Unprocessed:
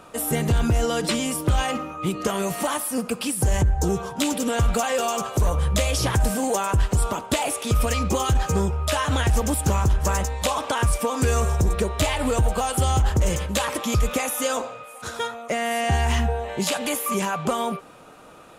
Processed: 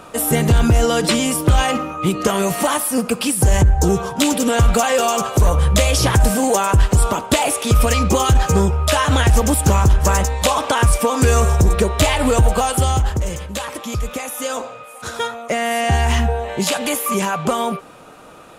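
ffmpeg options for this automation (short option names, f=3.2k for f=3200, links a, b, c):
-af "volume=14dB,afade=t=out:st=12.56:d=0.73:silence=0.354813,afade=t=in:st=14.24:d=0.96:silence=0.446684"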